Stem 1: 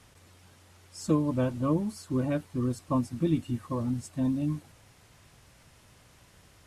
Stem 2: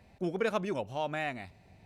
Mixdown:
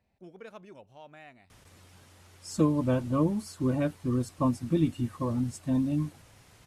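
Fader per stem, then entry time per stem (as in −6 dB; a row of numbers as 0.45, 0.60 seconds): +1.0, −16.0 decibels; 1.50, 0.00 seconds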